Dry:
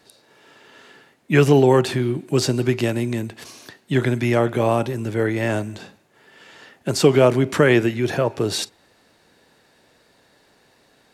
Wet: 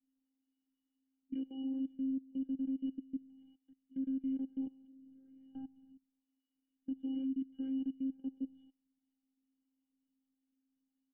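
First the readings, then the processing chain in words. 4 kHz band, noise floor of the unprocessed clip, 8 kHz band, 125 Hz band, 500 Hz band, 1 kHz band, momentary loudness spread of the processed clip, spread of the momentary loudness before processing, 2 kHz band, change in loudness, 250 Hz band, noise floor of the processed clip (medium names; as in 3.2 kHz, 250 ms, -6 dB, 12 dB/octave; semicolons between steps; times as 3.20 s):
under -35 dB, -59 dBFS, under -40 dB, under -40 dB, under -40 dB, under -40 dB, 13 LU, 12 LU, under -40 dB, -20.5 dB, -14.5 dB, under -85 dBFS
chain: bass shelf 170 Hz -11.5 dB; pitch-class resonator F#, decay 0.38 s; feedback delay 66 ms, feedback 59%, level -15 dB; robot voice 266 Hz; level-controlled noise filter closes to 2.6 kHz; spectral selection erased 7.24–7.50 s, 330–980 Hz; level held to a coarse grid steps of 23 dB; cascade formant filter i; distance through air 300 m; trim +12.5 dB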